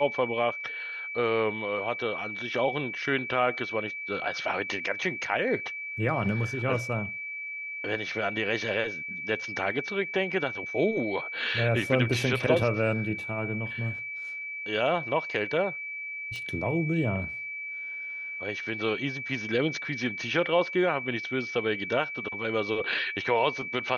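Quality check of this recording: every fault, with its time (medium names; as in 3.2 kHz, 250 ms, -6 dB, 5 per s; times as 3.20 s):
whine 2.3 kHz -34 dBFS
16.36 s: pop -26 dBFS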